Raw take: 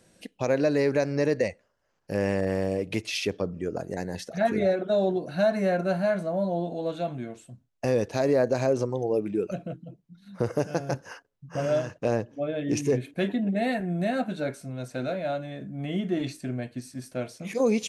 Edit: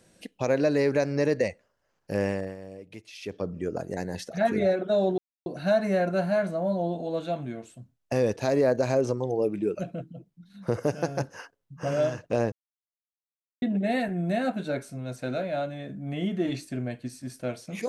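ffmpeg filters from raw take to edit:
-filter_complex "[0:a]asplit=6[a][b][c][d][e][f];[a]atrim=end=2.56,asetpts=PTS-STARTPTS,afade=t=out:st=2.21:d=0.35:silence=0.177828[g];[b]atrim=start=2.56:end=3.18,asetpts=PTS-STARTPTS,volume=-15dB[h];[c]atrim=start=3.18:end=5.18,asetpts=PTS-STARTPTS,afade=t=in:d=0.35:silence=0.177828,afade=t=out:st=1.996:d=0.004:c=hsin,apad=pad_dur=0.28[i];[d]atrim=start=5.18:end=12.24,asetpts=PTS-STARTPTS,afade=t=in:d=0.004:c=hsin,afade=t=out:st=7.056:d=0.004:c=hsin[j];[e]atrim=start=12.24:end=13.34,asetpts=PTS-STARTPTS,volume=0[k];[f]atrim=start=13.34,asetpts=PTS-STARTPTS,afade=t=in:d=0.004:c=hsin[l];[g][h][i][j][k][l]concat=n=6:v=0:a=1"

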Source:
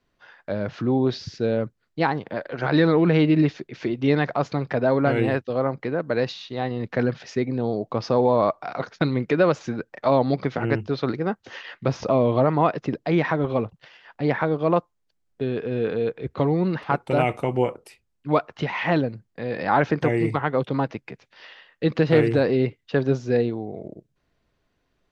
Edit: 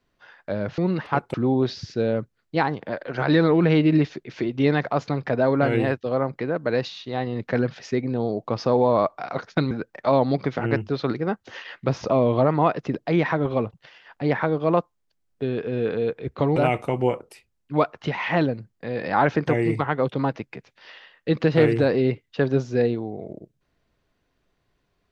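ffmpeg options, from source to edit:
-filter_complex "[0:a]asplit=5[a][b][c][d][e];[a]atrim=end=0.782[f];[b]atrim=start=16.548:end=17.112[g];[c]atrim=start=0.778:end=9.152[h];[d]atrim=start=9.698:end=16.552[i];[e]atrim=start=17.108[j];[f][g]acrossfade=d=0.004:c1=hsin:c2=hsin[k];[k][h]acrossfade=d=0.004:c1=hsin:c2=hsin[l];[l][i]acrossfade=d=0.004:c1=hsin:c2=hsin[m];[m][j]acrossfade=d=0.004:c1=hsin:c2=hsin"

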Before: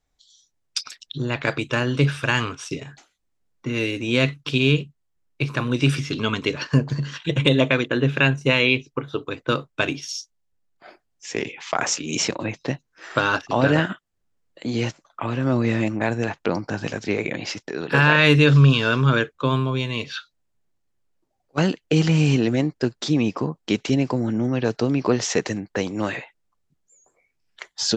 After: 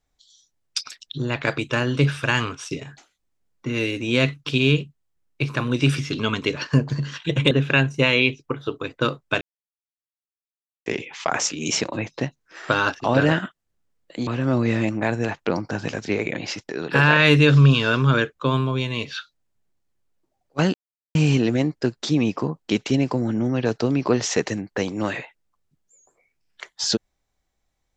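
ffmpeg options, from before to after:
-filter_complex "[0:a]asplit=7[a][b][c][d][e][f][g];[a]atrim=end=7.512[h];[b]atrim=start=7.978:end=9.88,asetpts=PTS-STARTPTS,afade=t=out:st=1.898:d=0.004:c=hsin[i];[c]atrim=start=9.88:end=11.33,asetpts=PTS-STARTPTS,volume=0[j];[d]atrim=start=11.33:end=14.742,asetpts=PTS-STARTPTS,afade=t=in:d=0.004:c=hsin[k];[e]atrim=start=15.258:end=21.73,asetpts=PTS-STARTPTS,afade=t=out:st=6.468:d=0.004:c=hsin[l];[f]atrim=start=21.73:end=22.14,asetpts=PTS-STARTPTS,volume=0[m];[g]atrim=start=22.14,asetpts=PTS-STARTPTS,afade=t=in:d=0.004:c=hsin[n];[i][j][k]concat=n=3:v=0:a=1[o];[h][o]acrossfade=d=0.004:c1=hsin:c2=hsin[p];[l][m][n]concat=n=3:v=0:a=1[q];[p][q]acrossfade=d=0.004:c1=hsin:c2=hsin"

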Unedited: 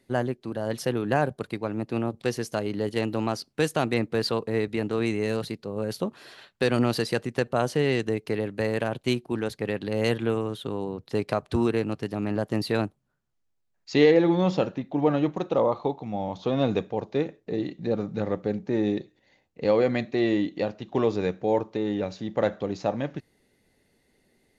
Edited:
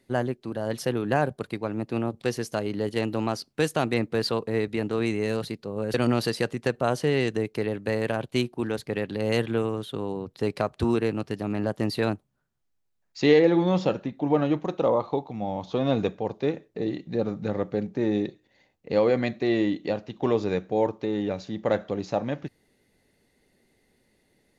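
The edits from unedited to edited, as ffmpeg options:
-filter_complex "[0:a]asplit=2[a][b];[a]atrim=end=5.942[c];[b]atrim=start=6.658[d];[c][d]acrossfade=d=0.004:c1=hsin:c2=hsin"

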